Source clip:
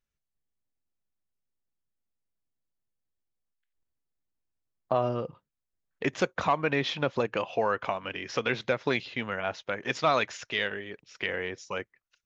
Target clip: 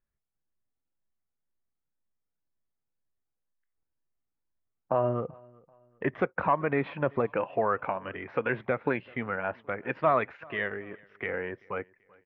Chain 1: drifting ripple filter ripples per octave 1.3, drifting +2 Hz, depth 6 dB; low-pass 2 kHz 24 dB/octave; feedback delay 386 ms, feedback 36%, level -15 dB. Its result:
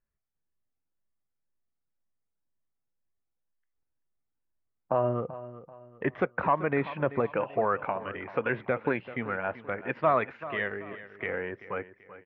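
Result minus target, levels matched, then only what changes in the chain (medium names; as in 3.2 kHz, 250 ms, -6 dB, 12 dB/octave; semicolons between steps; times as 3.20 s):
echo-to-direct +11 dB
change: feedback delay 386 ms, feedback 36%, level -26 dB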